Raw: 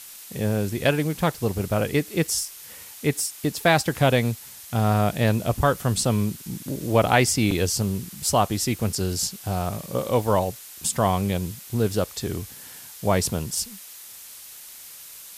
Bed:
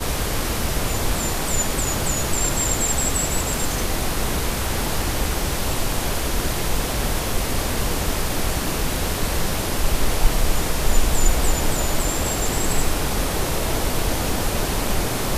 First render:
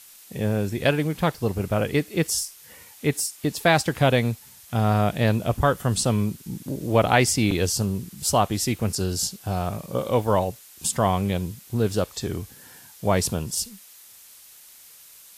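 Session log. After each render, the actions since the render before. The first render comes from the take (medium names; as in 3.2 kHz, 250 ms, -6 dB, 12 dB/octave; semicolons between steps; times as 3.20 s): noise print and reduce 6 dB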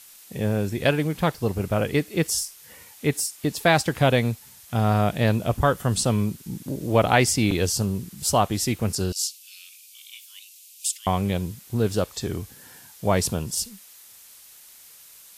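9.12–11.07 s: elliptic high-pass 2.5 kHz, stop band 70 dB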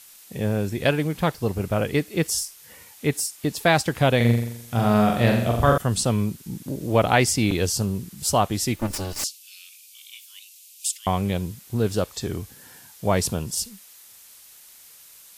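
4.16–5.78 s: flutter echo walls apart 7.3 m, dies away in 0.71 s; 8.76–9.24 s: comb filter that takes the minimum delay 3.4 ms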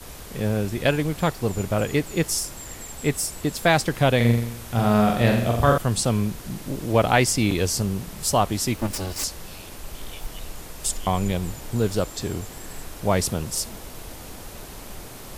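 add bed -17 dB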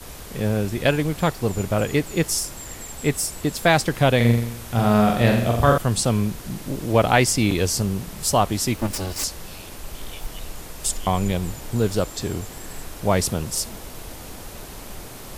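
trim +1.5 dB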